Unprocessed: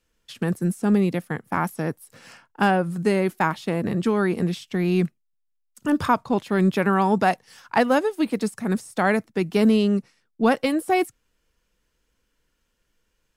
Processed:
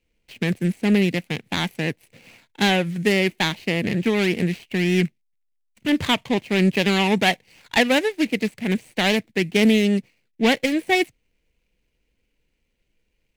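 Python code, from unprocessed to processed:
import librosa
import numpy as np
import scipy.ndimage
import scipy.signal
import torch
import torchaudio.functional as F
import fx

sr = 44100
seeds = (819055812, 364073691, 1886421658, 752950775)

y = scipy.ndimage.median_filter(x, 25, mode='constant')
y = fx.high_shelf_res(y, sr, hz=1600.0, db=9.0, q=3.0)
y = fx.doppler_dist(y, sr, depth_ms=0.11)
y = F.gain(torch.from_numpy(y), 1.5).numpy()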